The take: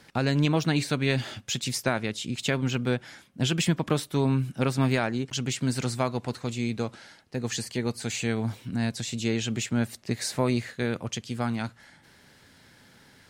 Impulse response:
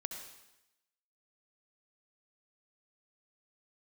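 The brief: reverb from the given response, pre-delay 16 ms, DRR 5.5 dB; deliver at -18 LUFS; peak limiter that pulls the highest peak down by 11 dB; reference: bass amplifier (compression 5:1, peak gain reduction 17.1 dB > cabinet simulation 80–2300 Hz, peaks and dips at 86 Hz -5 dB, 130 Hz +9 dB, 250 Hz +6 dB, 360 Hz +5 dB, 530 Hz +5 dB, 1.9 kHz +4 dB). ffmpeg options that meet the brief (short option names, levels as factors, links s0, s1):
-filter_complex "[0:a]alimiter=limit=0.0668:level=0:latency=1,asplit=2[s0][s1];[1:a]atrim=start_sample=2205,adelay=16[s2];[s1][s2]afir=irnorm=-1:irlink=0,volume=0.596[s3];[s0][s3]amix=inputs=2:normalize=0,acompressor=threshold=0.00631:ratio=5,highpass=f=80:w=0.5412,highpass=f=80:w=1.3066,equalizer=f=86:t=q:w=4:g=-5,equalizer=f=130:t=q:w=4:g=9,equalizer=f=250:t=q:w=4:g=6,equalizer=f=360:t=q:w=4:g=5,equalizer=f=530:t=q:w=4:g=5,equalizer=f=1900:t=q:w=4:g=4,lowpass=f=2300:w=0.5412,lowpass=f=2300:w=1.3066,volume=15.8"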